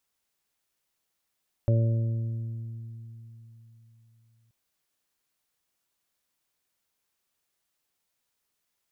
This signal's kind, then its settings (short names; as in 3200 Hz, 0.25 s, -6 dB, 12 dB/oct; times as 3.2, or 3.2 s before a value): additive tone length 2.83 s, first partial 114 Hz, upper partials -13.5/-15.5/-19/-10 dB, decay 3.75 s, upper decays 3.34/2.36/1.61/1.27 s, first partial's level -18.5 dB